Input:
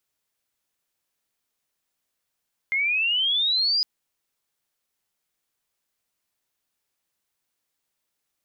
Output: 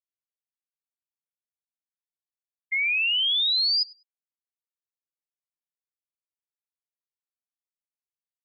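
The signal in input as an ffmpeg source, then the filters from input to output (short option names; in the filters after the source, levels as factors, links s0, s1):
-f lavfi -i "aevalsrc='pow(10,(-20.5+1.5*t/1.11)/20)*sin(2*PI*2100*1.11/log(5000/2100)*(exp(log(5000/2100)*t/1.11)-1))':d=1.11:s=44100"
-filter_complex "[0:a]afftfilt=real='re*gte(hypot(re,im),0.316)':imag='im*gte(hypot(re,im),0.316)':win_size=1024:overlap=0.75,highpass=1400,asplit=2[s0][s1];[s1]adelay=99,lowpass=f=3100:p=1,volume=0.119,asplit=2[s2][s3];[s3]adelay=99,lowpass=f=3100:p=1,volume=0.29[s4];[s0][s2][s4]amix=inputs=3:normalize=0"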